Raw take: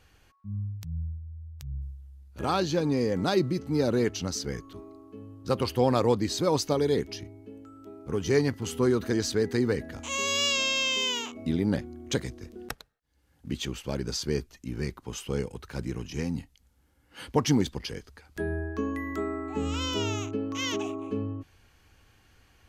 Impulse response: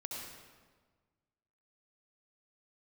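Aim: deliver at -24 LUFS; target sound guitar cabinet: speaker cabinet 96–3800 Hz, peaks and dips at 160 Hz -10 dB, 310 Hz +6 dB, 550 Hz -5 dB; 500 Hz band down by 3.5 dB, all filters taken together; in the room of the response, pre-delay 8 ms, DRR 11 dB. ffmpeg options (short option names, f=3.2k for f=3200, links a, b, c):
-filter_complex "[0:a]equalizer=f=500:t=o:g=-4,asplit=2[a][b];[1:a]atrim=start_sample=2205,adelay=8[c];[b][c]afir=irnorm=-1:irlink=0,volume=-10.5dB[d];[a][d]amix=inputs=2:normalize=0,highpass=96,equalizer=f=160:t=q:w=4:g=-10,equalizer=f=310:t=q:w=4:g=6,equalizer=f=550:t=q:w=4:g=-5,lowpass=f=3.8k:w=0.5412,lowpass=f=3.8k:w=1.3066,volume=6dB"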